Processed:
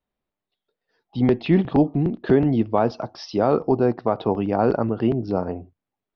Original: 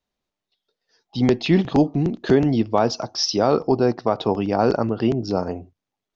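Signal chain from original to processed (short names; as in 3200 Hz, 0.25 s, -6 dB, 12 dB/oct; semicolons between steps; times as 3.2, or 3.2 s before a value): air absorption 330 m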